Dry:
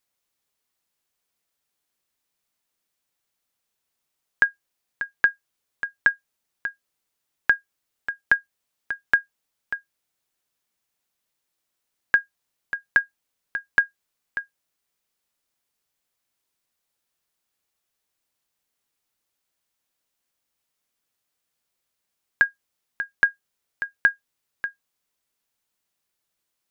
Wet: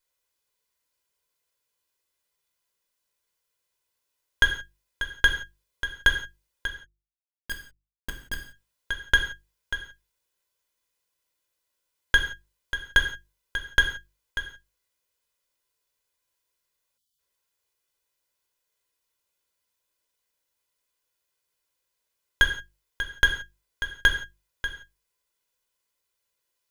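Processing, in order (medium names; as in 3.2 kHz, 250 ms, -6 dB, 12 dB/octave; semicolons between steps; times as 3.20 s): comb filter that takes the minimum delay 2 ms; 6.67–8.37 s: Schmitt trigger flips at -25 dBFS; hum notches 50/100/150/200/250/300/350 Hz; gated-style reverb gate 200 ms falling, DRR 4 dB; 16.98–17.19 s: spectral selection erased 290–2900 Hz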